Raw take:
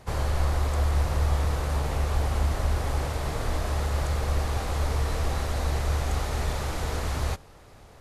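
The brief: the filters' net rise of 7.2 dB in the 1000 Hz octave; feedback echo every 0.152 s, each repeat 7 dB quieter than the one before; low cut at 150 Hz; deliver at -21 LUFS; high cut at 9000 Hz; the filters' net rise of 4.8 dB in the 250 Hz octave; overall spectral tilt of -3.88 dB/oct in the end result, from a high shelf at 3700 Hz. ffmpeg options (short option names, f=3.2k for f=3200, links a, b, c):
-af "highpass=150,lowpass=9k,equalizer=f=250:t=o:g=7,equalizer=f=1k:t=o:g=8,highshelf=f=3.7k:g=9,aecho=1:1:152|304|456|608|760:0.447|0.201|0.0905|0.0407|0.0183,volume=6dB"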